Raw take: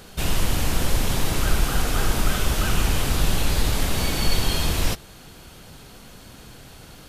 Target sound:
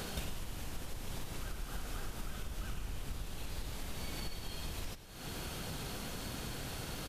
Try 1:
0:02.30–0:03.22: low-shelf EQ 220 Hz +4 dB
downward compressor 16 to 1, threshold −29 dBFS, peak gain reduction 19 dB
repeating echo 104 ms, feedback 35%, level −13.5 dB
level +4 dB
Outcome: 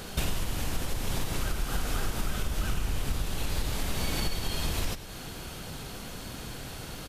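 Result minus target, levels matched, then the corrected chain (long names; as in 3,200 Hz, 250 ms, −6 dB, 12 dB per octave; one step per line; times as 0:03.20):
downward compressor: peak gain reduction −11.5 dB
0:02.30–0:03.22: low-shelf EQ 220 Hz +4 dB
downward compressor 16 to 1, threshold −41 dBFS, peak gain reduction 30.5 dB
repeating echo 104 ms, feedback 35%, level −13.5 dB
level +4 dB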